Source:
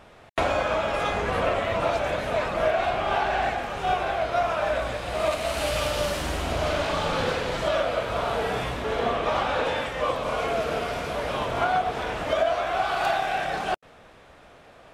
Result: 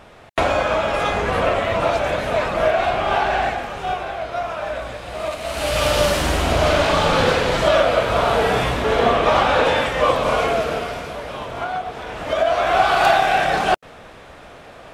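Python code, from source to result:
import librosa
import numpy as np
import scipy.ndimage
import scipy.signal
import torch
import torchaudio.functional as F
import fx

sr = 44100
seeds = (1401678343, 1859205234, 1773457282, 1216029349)

y = fx.gain(x, sr, db=fx.line((3.34, 5.5), (4.1, -1.0), (5.38, -1.0), (5.91, 9.0), (10.33, 9.0), (11.25, -2.0), (12.05, -2.0), (12.71, 9.5)))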